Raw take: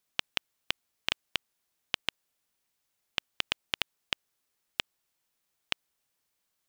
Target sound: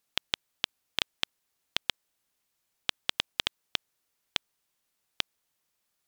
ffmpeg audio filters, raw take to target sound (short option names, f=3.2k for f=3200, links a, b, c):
-af "asetrate=48510,aresample=44100,volume=1.5dB"